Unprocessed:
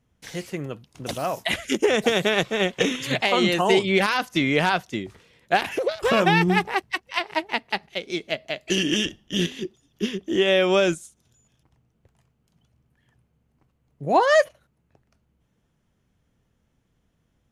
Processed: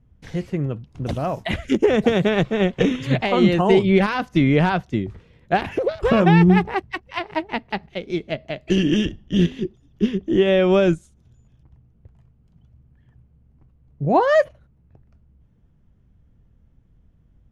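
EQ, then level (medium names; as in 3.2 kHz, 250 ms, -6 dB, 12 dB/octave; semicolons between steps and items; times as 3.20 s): RIAA curve playback; 0.0 dB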